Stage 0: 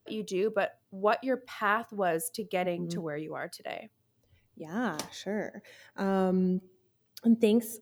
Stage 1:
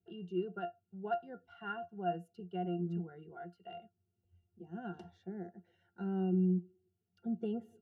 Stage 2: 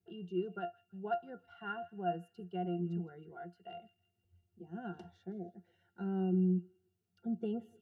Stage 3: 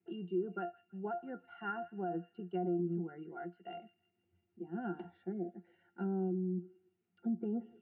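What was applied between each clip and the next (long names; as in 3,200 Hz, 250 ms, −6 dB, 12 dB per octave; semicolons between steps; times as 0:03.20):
resonances in every octave F, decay 0.12 s
gain on a spectral selection 0:05.32–0:05.56, 760–2,100 Hz −23 dB; delay with a high-pass on its return 162 ms, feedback 43%, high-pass 2,300 Hz, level −16 dB
brickwall limiter −32.5 dBFS, peak gain reduction 9.5 dB; treble cut that deepens with the level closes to 940 Hz, closed at −35 dBFS; loudspeaker in its box 260–2,300 Hz, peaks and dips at 310 Hz +5 dB, 450 Hz −9 dB, 650 Hz −8 dB, 1,100 Hz −7 dB, 1,600 Hz −5 dB; level +8.5 dB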